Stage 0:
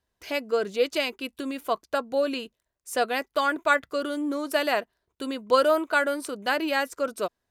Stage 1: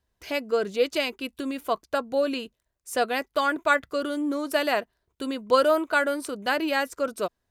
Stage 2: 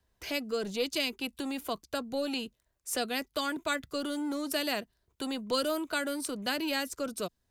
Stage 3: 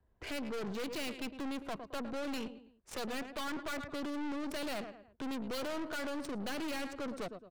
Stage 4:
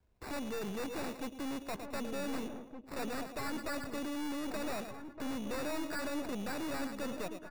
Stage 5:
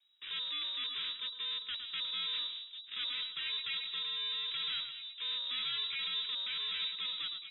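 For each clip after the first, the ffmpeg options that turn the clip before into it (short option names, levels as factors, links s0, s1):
-af "lowshelf=f=140:g=7"
-filter_complex "[0:a]acrossover=split=280|3000[s0][s1][s2];[s1]acompressor=threshold=0.00501:ratio=2[s3];[s0][s3][s2]amix=inputs=3:normalize=0,acrossover=split=370[s4][s5];[s4]asoftclip=type=hard:threshold=0.0106[s6];[s6][s5]amix=inputs=2:normalize=0,volume=1.26"
-af "aecho=1:1:109|218|327:0.178|0.0676|0.0257,adynamicsmooth=sensitivity=6.5:basefreq=1500,aeval=exprs='(tanh(126*val(0)+0.55)-tanh(0.55))/126':c=same,volume=1.78"
-filter_complex "[0:a]acrusher=samples=14:mix=1:aa=0.000001,asplit=2[s0][s1];[s1]adelay=1516,volume=0.447,highshelf=f=4000:g=-34.1[s2];[s0][s2]amix=inputs=2:normalize=0"
-af "lowpass=f=3300:t=q:w=0.5098,lowpass=f=3300:t=q:w=0.6013,lowpass=f=3300:t=q:w=0.9,lowpass=f=3300:t=q:w=2.563,afreqshift=-3900"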